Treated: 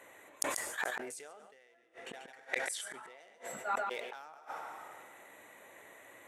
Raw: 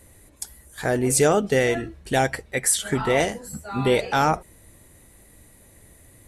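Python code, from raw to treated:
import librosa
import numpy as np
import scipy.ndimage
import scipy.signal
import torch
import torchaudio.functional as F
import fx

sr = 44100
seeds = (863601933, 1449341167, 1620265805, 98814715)

y = fx.wiener(x, sr, points=9)
y = fx.lowpass(y, sr, hz=11000.0, slope=12, at=(1.05, 3.39))
y = fx.rev_plate(y, sr, seeds[0], rt60_s=1.6, hf_ratio=0.75, predelay_ms=0, drr_db=17.5)
y = fx.gate_flip(y, sr, shuts_db=-22.0, range_db=-42)
y = fx.rider(y, sr, range_db=3, speed_s=0.5)
y = scipy.signal.sosfilt(scipy.signal.butter(2, 720.0, 'highpass', fs=sr, output='sos'), y)
y = y + 10.0 ** (-15.0 / 20.0) * np.pad(y, (int(140 * sr / 1000.0), 0))[:len(y)]
y = fx.sustainer(y, sr, db_per_s=36.0)
y = y * librosa.db_to_amplitude(5.0)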